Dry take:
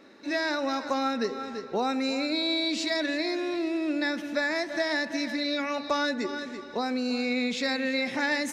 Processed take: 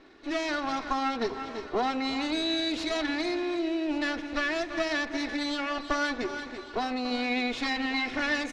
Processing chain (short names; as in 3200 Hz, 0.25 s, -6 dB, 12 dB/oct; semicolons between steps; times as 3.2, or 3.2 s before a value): minimum comb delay 2.8 ms; LPF 4700 Hz 12 dB/oct; echo 1.144 s -17.5 dB